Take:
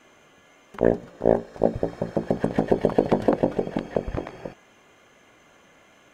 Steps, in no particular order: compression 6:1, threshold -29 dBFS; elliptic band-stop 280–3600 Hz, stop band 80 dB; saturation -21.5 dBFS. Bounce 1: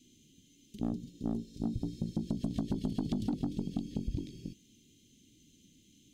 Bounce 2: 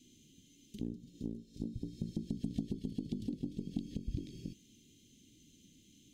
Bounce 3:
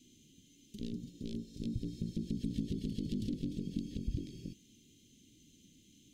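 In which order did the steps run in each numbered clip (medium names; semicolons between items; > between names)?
elliptic band-stop > saturation > compression; compression > elliptic band-stop > saturation; saturation > compression > elliptic band-stop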